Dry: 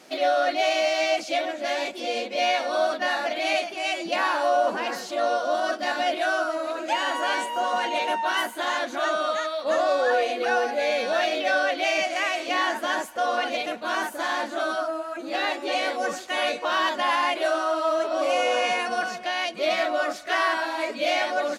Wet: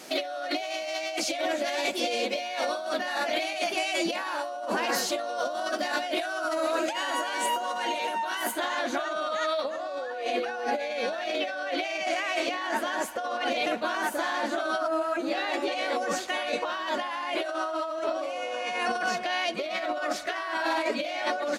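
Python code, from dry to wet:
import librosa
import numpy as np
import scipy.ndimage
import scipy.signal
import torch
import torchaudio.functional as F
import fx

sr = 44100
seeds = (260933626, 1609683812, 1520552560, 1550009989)

y = fx.high_shelf(x, sr, hz=6600.0, db=fx.steps((0.0, 8.0), (8.51, -3.0)))
y = fx.over_compress(y, sr, threshold_db=-30.0, ratio=-1.0)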